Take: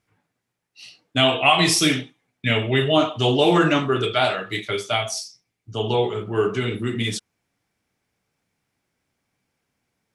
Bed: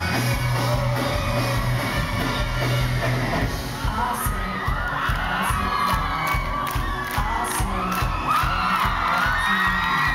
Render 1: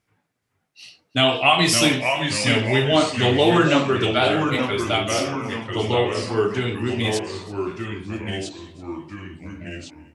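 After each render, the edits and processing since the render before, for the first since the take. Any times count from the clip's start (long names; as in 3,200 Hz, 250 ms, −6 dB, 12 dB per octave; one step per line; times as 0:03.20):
delay with pitch and tempo change per echo 421 ms, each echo −2 semitones, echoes 3, each echo −6 dB
repeating echo 334 ms, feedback 54%, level −22 dB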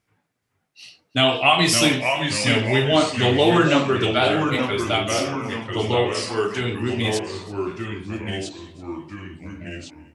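0:06.14–0:06.61: spectral tilt +2 dB per octave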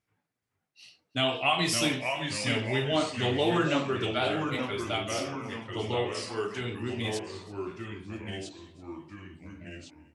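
level −9.5 dB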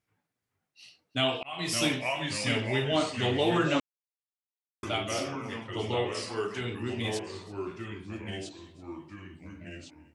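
0:01.43–0:01.83: fade in linear
0:03.80–0:04.83: silence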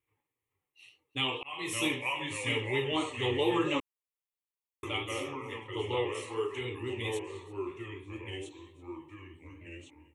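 pitch vibrato 4.4 Hz 43 cents
phaser with its sweep stopped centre 1,000 Hz, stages 8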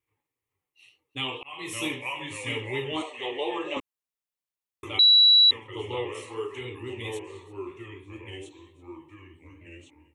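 0:03.02–0:03.77: loudspeaker in its box 430–8,000 Hz, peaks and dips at 670 Hz +9 dB, 1,400 Hz −9 dB, 4,800 Hz −6 dB, 6,900 Hz −7 dB
0:04.99–0:05.51: beep over 3,920 Hz −13 dBFS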